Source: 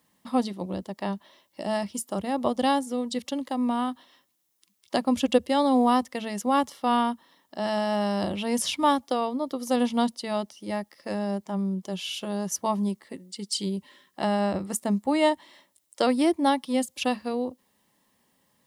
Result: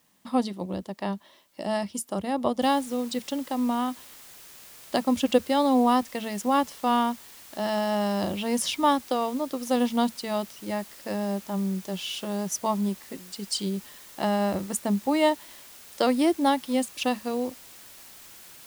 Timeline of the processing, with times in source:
2.62 noise floor step -69 dB -48 dB

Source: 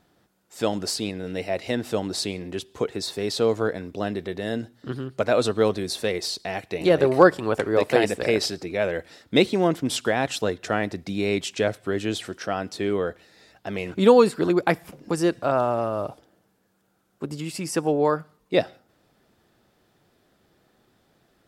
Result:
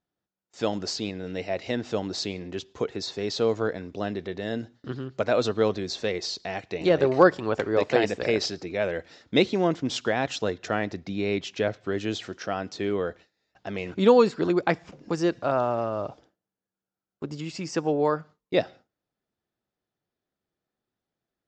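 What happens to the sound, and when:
10.99–11.81 air absorption 76 m
whole clip: steep low-pass 7200 Hz 72 dB/oct; gate with hold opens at -42 dBFS; gain -2.5 dB

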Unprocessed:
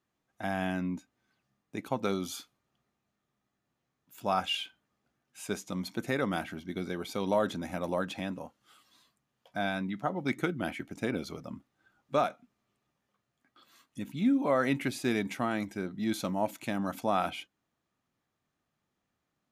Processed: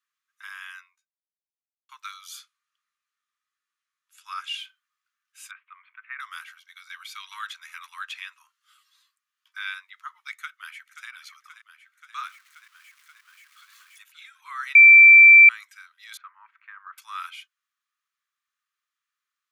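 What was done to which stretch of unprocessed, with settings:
0.8–1.89 fade out exponential
2.39–4.6 brick-wall FIR low-pass 12000 Hz
5.51–6.2 steep low-pass 2600 Hz 48 dB/oct
6.82–9.74 dynamic EQ 2400 Hz, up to +7 dB, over -49 dBFS, Q 0.95
10.33–11.08 echo throw 0.53 s, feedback 75%, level -10.5 dB
12.26–14.03 zero-crossing step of -48.5 dBFS
14.75–15.49 bleep 2340 Hz -6.5 dBFS
16.17–16.98 Chebyshev low-pass 1700 Hz, order 3
whole clip: steep high-pass 1100 Hz 72 dB/oct

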